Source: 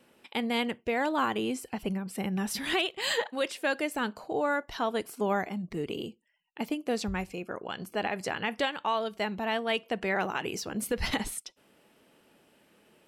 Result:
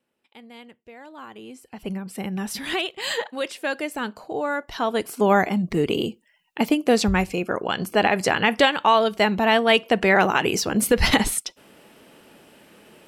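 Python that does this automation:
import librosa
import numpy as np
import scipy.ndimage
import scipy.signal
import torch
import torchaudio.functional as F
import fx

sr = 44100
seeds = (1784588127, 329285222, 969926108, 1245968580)

y = fx.gain(x, sr, db=fx.line((1.03, -15.0), (1.68, -7.0), (1.9, 2.5), (4.51, 2.5), (5.44, 12.0)))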